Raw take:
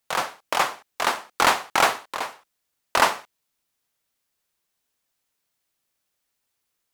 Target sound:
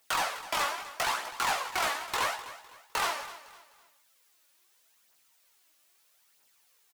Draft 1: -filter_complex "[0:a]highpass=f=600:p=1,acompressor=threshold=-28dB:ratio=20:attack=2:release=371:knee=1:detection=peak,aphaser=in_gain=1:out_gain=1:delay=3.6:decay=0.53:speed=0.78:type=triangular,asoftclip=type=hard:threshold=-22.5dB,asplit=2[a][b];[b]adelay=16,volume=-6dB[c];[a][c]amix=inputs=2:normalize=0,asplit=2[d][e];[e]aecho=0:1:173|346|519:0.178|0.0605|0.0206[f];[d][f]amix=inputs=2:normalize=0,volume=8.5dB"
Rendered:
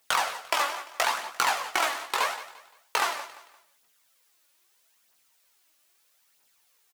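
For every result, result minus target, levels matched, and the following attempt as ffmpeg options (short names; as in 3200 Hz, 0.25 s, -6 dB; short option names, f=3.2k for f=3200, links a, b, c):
hard clip: distortion -11 dB; echo 81 ms early
-filter_complex "[0:a]highpass=f=600:p=1,acompressor=threshold=-28dB:ratio=20:attack=2:release=371:knee=1:detection=peak,aphaser=in_gain=1:out_gain=1:delay=3.6:decay=0.53:speed=0.78:type=triangular,asoftclip=type=hard:threshold=-34dB,asplit=2[a][b];[b]adelay=16,volume=-6dB[c];[a][c]amix=inputs=2:normalize=0,asplit=2[d][e];[e]aecho=0:1:173|346|519:0.178|0.0605|0.0206[f];[d][f]amix=inputs=2:normalize=0,volume=8.5dB"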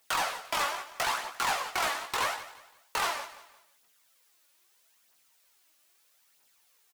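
echo 81 ms early
-filter_complex "[0:a]highpass=f=600:p=1,acompressor=threshold=-28dB:ratio=20:attack=2:release=371:knee=1:detection=peak,aphaser=in_gain=1:out_gain=1:delay=3.6:decay=0.53:speed=0.78:type=triangular,asoftclip=type=hard:threshold=-34dB,asplit=2[a][b];[b]adelay=16,volume=-6dB[c];[a][c]amix=inputs=2:normalize=0,asplit=2[d][e];[e]aecho=0:1:254|508|762:0.178|0.0605|0.0206[f];[d][f]amix=inputs=2:normalize=0,volume=8.5dB"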